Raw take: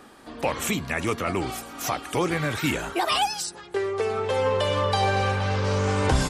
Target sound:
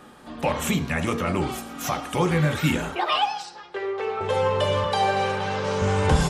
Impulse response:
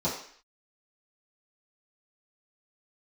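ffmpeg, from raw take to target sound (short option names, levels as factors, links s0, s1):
-filter_complex "[0:a]asettb=1/sr,asplit=3[s0][s1][s2];[s0]atrim=end=2.954[s3];[s1]atrim=start=2.95:end=4.21,asetpts=PTS-STARTPTS,afade=t=in:d=0.004:c=qsin,afade=t=out:st=1.256:d=0.004:c=qsin,acrossover=split=350 4700:gain=0.158 1 0.0891[s4][s5][s6];[s4][s5][s6]amix=inputs=3:normalize=0[s7];[s2]atrim=start=4.206[s8];[s3][s7]acrossfade=d=0.004:c1=hsin:c2=qsin[s9];[s9][s8]acrossfade=d=0.004:c1=qsin:c2=hsin,asettb=1/sr,asplit=3[s10][s11][s12];[s10]atrim=end=4.844[s13];[s11]atrim=start=4.84:end=5.82,asetpts=PTS-STARTPTS,afade=t=in:d=0.004:c=qsin,afade=t=out:st=0.976:d=0.004:c=qsin,highpass=180[s14];[s12]atrim=start=5.816[s15];[s13][s14]acrossfade=d=0.004:c1=hsin:c2=qsin[s16];[s16][s15]acrossfade=d=0.004:c1=qsin:c2=hsin,asplit=2[s17][s18];[1:a]atrim=start_sample=2205,asetrate=41454,aresample=44100[s19];[s18][s19]afir=irnorm=-1:irlink=0,volume=0.178[s20];[s17][s20]amix=inputs=2:normalize=0"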